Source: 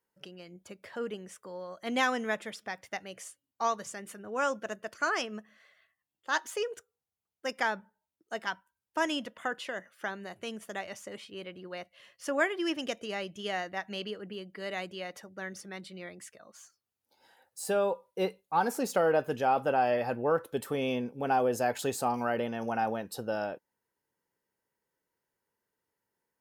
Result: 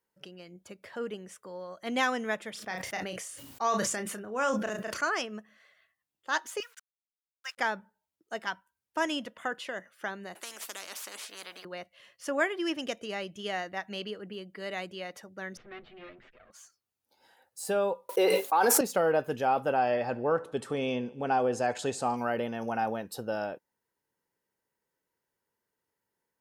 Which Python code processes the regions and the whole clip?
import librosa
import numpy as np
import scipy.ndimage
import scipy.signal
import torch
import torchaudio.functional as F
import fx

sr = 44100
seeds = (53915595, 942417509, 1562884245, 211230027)

y = fx.chain(x, sr, fx.doubler(ms=33.0, db=-10.5),
    fx.sustainer(db_per_s=30.0), at=(2.51, 5.01))
y = fx.chain(y, sr, fx.delta_hold(step_db=-51.5),
    fx.highpass(hz=1200.0, slope=24),
    fx.high_shelf(hz=9500.0, db=-5.0), at=(6.6, 7.58))
y = fx.chain(y, sr, fx.highpass(hz=470.0, slope=24),
    fx.spectral_comp(ratio=4.0), at=(10.35, 11.65))
y = fx.chain(y, sr, fx.lower_of_two(delay_ms=8.1),
    fx.lowpass(hz=3000.0, slope=24),
    fx.peak_eq(hz=940.0, db=-10.5, octaves=0.25), at=(15.57, 16.51))
y = fx.chain(y, sr, fx.highpass(hz=300.0, slope=24),
    fx.high_shelf(hz=9000.0, db=3.5),
    fx.env_flatten(amount_pct=100), at=(18.09, 18.81))
y = fx.chain(y, sr, fx.lowpass(hz=8800.0, slope=24),
    fx.echo_feedback(ms=71, feedback_pct=56, wet_db=-21.5), at=(19.79, 22.17))